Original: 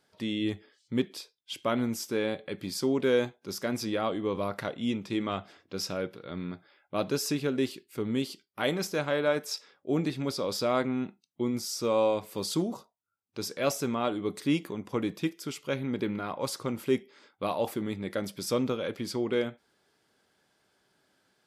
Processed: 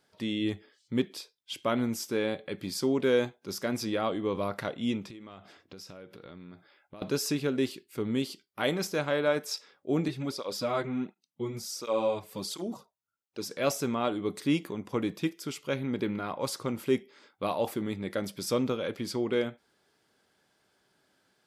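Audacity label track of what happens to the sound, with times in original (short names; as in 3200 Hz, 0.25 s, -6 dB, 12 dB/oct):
5.100000	7.020000	compressor 16:1, threshold -42 dBFS
10.080000	13.510000	tape flanging out of phase nulls at 1.4 Hz, depth 4.5 ms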